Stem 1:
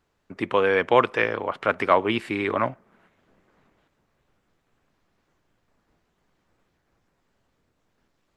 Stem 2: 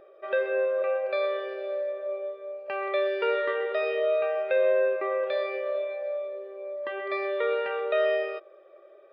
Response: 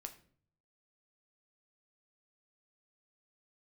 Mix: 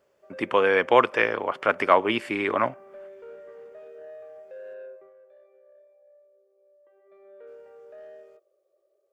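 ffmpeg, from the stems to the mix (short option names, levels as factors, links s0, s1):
-filter_complex "[0:a]highpass=f=250:p=1,bandreject=f=3900:w=7.2,volume=1.12,asplit=3[s0][s1][s2];[s0]atrim=end=4.74,asetpts=PTS-STARTPTS,afade=t=out:st=4.736:d=0.004:c=hsin[s3];[s1]atrim=start=4.74:end=7.47,asetpts=PTS-STARTPTS,volume=0[s4];[s2]atrim=start=7.47,asetpts=PTS-STARTPTS,afade=t=in:d=0.004:c=hsin[s5];[s3][s4][s5]concat=n=3:v=0:a=1[s6];[1:a]bandpass=f=480:t=q:w=1.5:csg=0,acrusher=bits=11:mix=0:aa=0.000001,asoftclip=type=tanh:threshold=0.0708,volume=0.473,afade=t=out:st=4.91:d=0.22:silence=0.316228,afade=t=in:st=7:d=0.44:silence=0.421697[s7];[s6][s7]amix=inputs=2:normalize=0"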